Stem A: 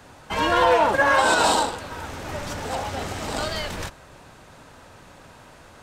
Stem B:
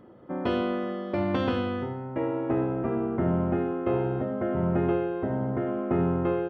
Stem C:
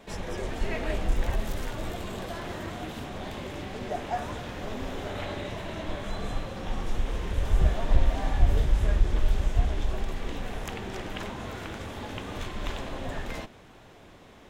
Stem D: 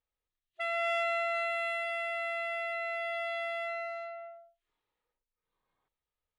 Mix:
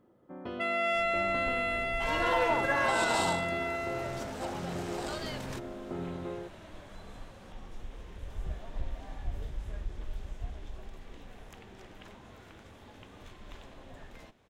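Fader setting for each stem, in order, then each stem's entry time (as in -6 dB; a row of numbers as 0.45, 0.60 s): -11.0, -13.0, -15.0, +1.5 dB; 1.70, 0.00, 0.85, 0.00 s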